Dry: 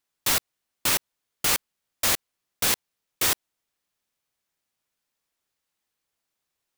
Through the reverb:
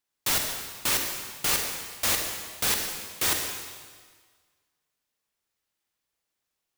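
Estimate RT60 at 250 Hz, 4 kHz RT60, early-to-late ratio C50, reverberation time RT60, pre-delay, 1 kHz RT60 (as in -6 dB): 1.6 s, 1.5 s, 3.5 dB, 1.6 s, 32 ms, 1.6 s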